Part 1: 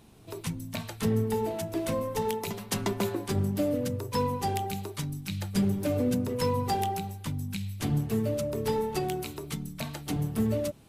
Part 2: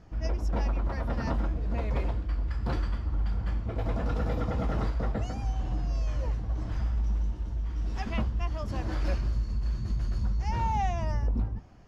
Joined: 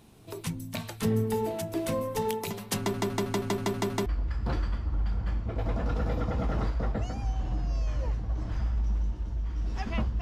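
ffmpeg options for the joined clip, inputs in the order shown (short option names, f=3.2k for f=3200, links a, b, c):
-filter_complex "[0:a]apad=whole_dur=10.21,atrim=end=10.21,asplit=8[a][b][c][d][e][f][g][h];[a]atrim=end=2.942[i];[b]atrim=start=2.778:end=2.942[j];[c]atrim=start=2.778:end=2.942[k];[d]atrim=start=2.778:end=2.942[l];[e]atrim=start=2.778:end=2.942[m];[f]atrim=start=2.778:end=2.942[n];[g]atrim=start=2.778:end=2.942[o];[h]atrim=start=2.778:end=2.942[p];[1:a]atrim=start=2.258:end=8.41[q];[i][j]acrossfade=d=0.004:c1=hsin:c2=hsin[r];[r][k]acrossfade=d=0.004:c1=hsin:c2=hsin[s];[s][l]acrossfade=d=0.004:c1=hsin:c2=hsin[t];[t][m]acrossfade=d=0.004:c1=hsin:c2=hsin[u];[u][n]acrossfade=d=0.004:c1=hsin:c2=hsin[v];[v][o]acrossfade=d=0.004:c1=hsin:c2=hsin[w];[w][p]acrossfade=d=0.004:c1=hsin:c2=hsin[x];[x][q]acrossfade=d=0.004:c1=hsin:c2=hsin"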